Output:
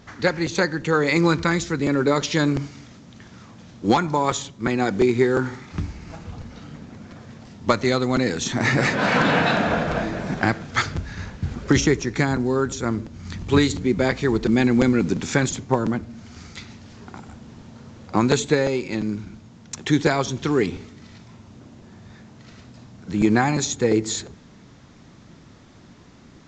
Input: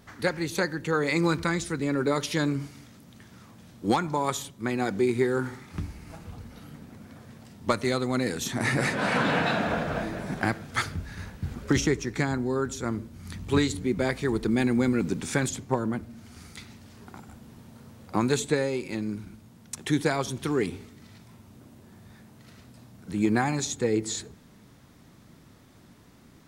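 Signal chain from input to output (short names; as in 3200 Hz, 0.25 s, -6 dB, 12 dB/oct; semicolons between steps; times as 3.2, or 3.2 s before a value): crackling interface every 0.35 s, samples 256, repeat, from 0.46; gain +6 dB; µ-law 128 kbps 16000 Hz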